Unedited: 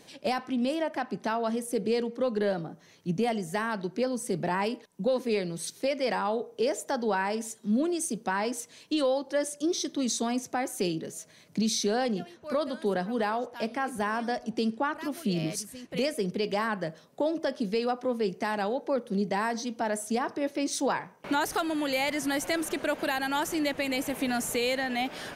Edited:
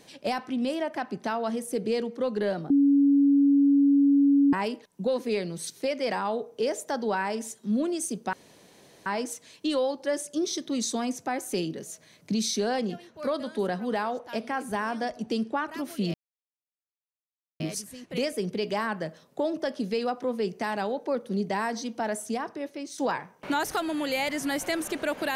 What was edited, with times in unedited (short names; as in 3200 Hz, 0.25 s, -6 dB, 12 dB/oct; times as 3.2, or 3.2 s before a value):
2.7–4.53 bleep 281 Hz -16.5 dBFS
8.33 insert room tone 0.73 s
15.41 insert silence 1.46 s
19.91–20.79 fade out, to -10.5 dB